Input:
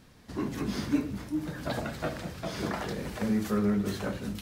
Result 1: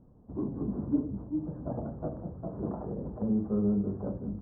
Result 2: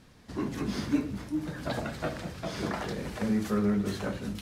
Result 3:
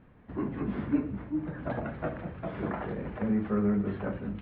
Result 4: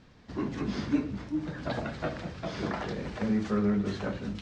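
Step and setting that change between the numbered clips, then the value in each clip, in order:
Bessel low-pass, frequency: 580 Hz, 12 kHz, 1.6 kHz, 4.5 kHz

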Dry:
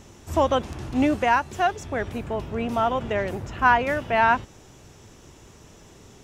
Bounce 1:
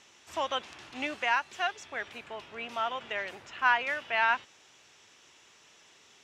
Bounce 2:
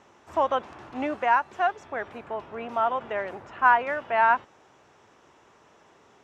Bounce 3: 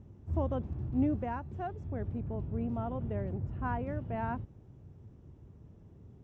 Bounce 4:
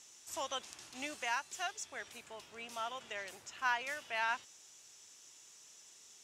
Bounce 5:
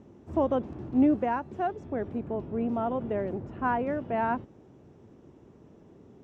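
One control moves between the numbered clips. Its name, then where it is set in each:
band-pass filter, frequency: 2.9 kHz, 1.1 kHz, 100 Hz, 7.3 kHz, 270 Hz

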